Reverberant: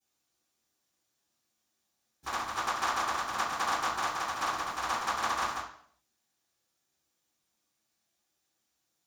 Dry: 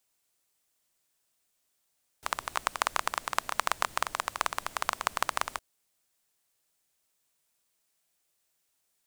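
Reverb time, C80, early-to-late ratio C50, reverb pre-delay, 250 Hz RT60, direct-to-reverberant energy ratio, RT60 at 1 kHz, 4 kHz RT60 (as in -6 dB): 0.60 s, 7.5 dB, 3.5 dB, 3 ms, 0.60 s, -15.5 dB, 0.55 s, 0.55 s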